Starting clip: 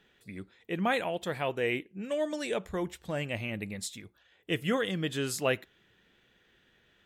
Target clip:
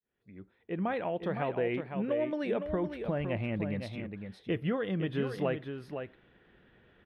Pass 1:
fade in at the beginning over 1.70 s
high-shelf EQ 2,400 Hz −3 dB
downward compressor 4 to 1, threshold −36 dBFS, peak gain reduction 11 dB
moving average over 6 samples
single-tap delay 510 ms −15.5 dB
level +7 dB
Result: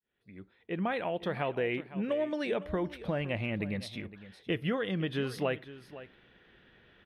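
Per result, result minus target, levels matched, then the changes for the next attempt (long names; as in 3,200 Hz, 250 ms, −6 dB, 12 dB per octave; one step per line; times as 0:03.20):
4,000 Hz band +5.5 dB; echo-to-direct −8 dB
change: high-shelf EQ 2,400 Hz −14.5 dB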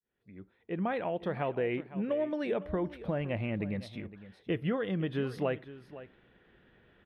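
echo-to-direct −8 dB
change: single-tap delay 510 ms −7.5 dB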